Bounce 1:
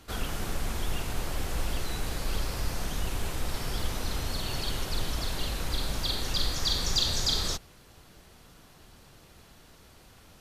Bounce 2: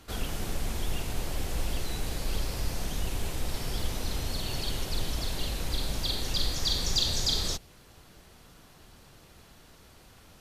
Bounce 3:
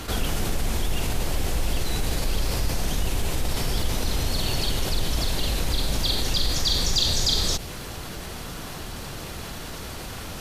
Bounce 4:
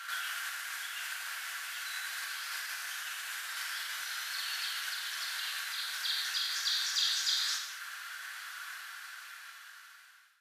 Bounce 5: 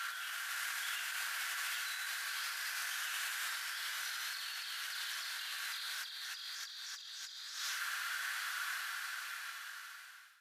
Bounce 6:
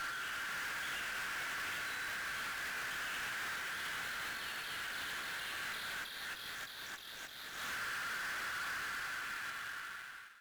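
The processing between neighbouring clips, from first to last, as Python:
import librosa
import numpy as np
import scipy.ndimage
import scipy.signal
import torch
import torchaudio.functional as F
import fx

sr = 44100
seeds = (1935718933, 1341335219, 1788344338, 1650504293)

y1 = fx.dynamic_eq(x, sr, hz=1300.0, q=1.3, threshold_db=-52.0, ratio=4.0, max_db=-5)
y2 = fx.env_flatten(y1, sr, amount_pct=50)
y2 = y2 * librosa.db_to_amplitude(3.5)
y3 = fx.fade_out_tail(y2, sr, length_s=1.82)
y3 = fx.ladder_highpass(y3, sr, hz=1400.0, resonance_pct=70)
y3 = fx.rev_gated(y3, sr, seeds[0], gate_ms=260, shape='falling', drr_db=0.0)
y4 = fx.over_compress(y3, sr, threshold_db=-42.0, ratio=-1.0)
y5 = scipy.ndimage.median_filter(y4, 9, mode='constant')
y5 = fx.tube_stage(y5, sr, drive_db=45.0, bias=0.2)
y5 = y5 * librosa.db_to_amplitude(7.5)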